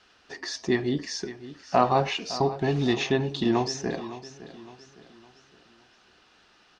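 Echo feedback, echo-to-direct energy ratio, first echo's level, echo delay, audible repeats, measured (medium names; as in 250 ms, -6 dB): 40%, -14.0 dB, -15.0 dB, 560 ms, 3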